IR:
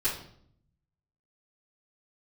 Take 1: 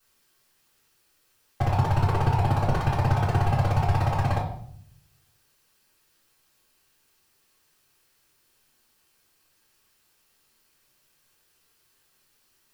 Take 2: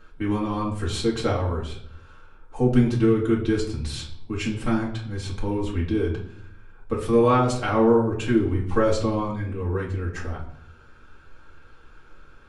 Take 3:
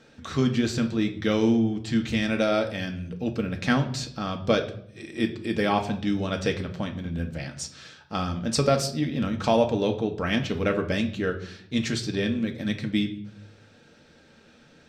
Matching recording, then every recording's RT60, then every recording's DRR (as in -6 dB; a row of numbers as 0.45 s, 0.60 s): 1; 0.65 s, 0.65 s, 0.65 s; -13.5 dB, -5.0 dB, 3.5 dB